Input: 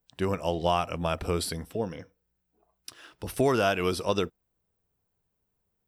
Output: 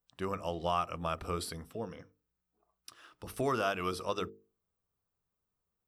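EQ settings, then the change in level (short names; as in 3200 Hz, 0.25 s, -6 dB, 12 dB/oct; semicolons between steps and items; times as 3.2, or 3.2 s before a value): bell 1200 Hz +9.5 dB 0.3 oct; notches 50/100/150/200/250/300/350/400/450 Hz; -8.0 dB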